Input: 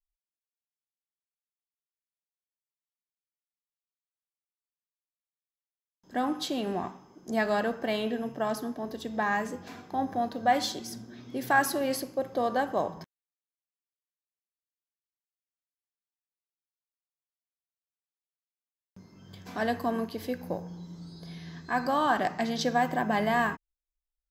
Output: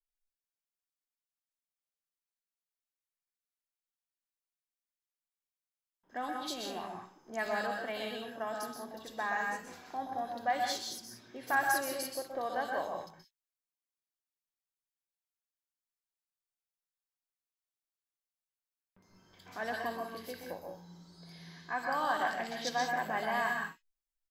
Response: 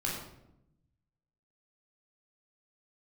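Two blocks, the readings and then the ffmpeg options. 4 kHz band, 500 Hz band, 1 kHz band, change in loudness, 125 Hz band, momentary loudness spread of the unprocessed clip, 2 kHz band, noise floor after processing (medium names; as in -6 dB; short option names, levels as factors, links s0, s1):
-4.0 dB, -7.5 dB, -5.0 dB, -6.0 dB, -13.0 dB, 17 LU, -3.0 dB, under -85 dBFS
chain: -filter_complex "[0:a]equalizer=f=130:w=0.32:g=-15,acrossover=split=2900[s0][s1];[s1]adelay=60[s2];[s0][s2]amix=inputs=2:normalize=0,asplit=2[s3][s4];[1:a]atrim=start_sample=2205,atrim=end_sample=3528,adelay=125[s5];[s4][s5]afir=irnorm=-1:irlink=0,volume=0.501[s6];[s3][s6]amix=inputs=2:normalize=0,volume=0.668"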